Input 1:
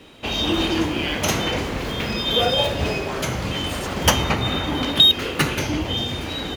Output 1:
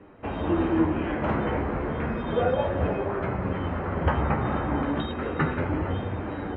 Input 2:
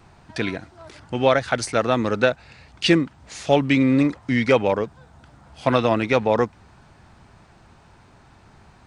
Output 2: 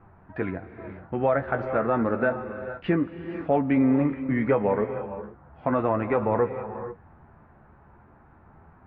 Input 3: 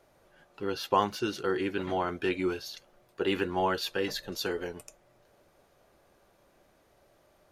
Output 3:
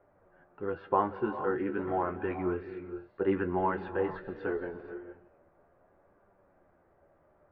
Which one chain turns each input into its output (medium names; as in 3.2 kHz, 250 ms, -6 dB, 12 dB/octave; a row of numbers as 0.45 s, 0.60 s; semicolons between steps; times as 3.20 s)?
low-pass 1.7 kHz 24 dB/octave; flange 0.32 Hz, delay 9.9 ms, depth 4.7 ms, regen +40%; gated-style reverb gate 500 ms rising, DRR 10.5 dB; loudness maximiser +12.5 dB; peak normalisation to -12 dBFS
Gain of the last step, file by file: -11.0 dB, -11.0 dB, -9.5 dB